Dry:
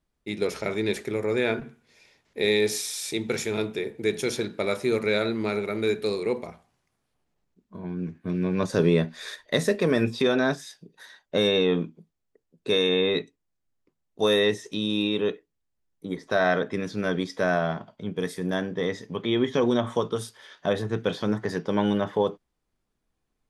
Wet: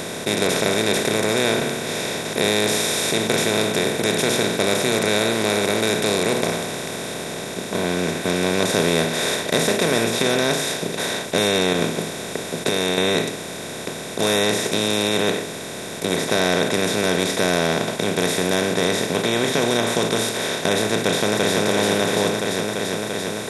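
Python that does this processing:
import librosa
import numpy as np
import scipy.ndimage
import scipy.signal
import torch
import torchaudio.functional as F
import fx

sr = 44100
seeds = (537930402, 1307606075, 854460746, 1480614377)

y = fx.over_compress(x, sr, threshold_db=-28.0, ratio=-0.5, at=(11.73, 12.98))
y = fx.echo_throw(y, sr, start_s=20.99, length_s=0.63, ms=340, feedback_pct=45, wet_db=-2.0)
y = fx.bin_compress(y, sr, power=0.2)
y = fx.high_shelf(y, sr, hz=4800.0, db=9.5)
y = y * librosa.db_to_amplitude(-5.0)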